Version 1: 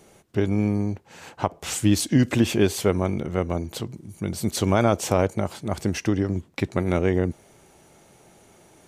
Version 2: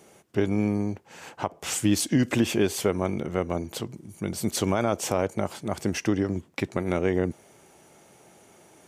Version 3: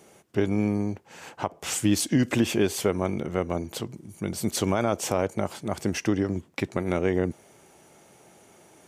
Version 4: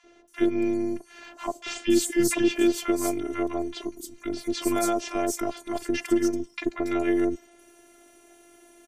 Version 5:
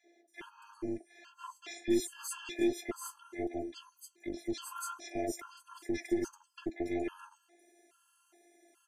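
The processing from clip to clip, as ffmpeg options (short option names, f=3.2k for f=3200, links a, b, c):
-af "highpass=f=160:p=1,equalizer=f=4k:t=o:w=0.25:g=-3.5,alimiter=limit=-11dB:level=0:latency=1:release=204"
-af anull
-filter_complex "[0:a]afftfilt=real='hypot(re,im)*cos(PI*b)':imag='0':win_size=512:overlap=0.75,acrossover=split=1000|5400[a][b][c];[a]adelay=40[d];[c]adelay=280[e];[d][b][e]amix=inputs=3:normalize=0,volume=4.5dB"
-filter_complex "[0:a]flanger=delay=3.3:depth=9.3:regen=-47:speed=1.4:shape=triangular,acrossover=split=240|5900[a][b][c];[a]acrusher=bits=5:mix=0:aa=0.5[d];[d][b][c]amix=inputs=3:normalize=0,afftfilt=real='re*gt(sin(2*PI*1.2*pts/sr)*(1-2*mod(floor(b*sr/1024/840),2)),0)':imag='im*gt(sin(2*PI*1.2*pts/sr)*(1-2*mod(floor(b*sr/1024/840),2)),0)':win_size=1024:overlap=0.75,volume=-4.5dB"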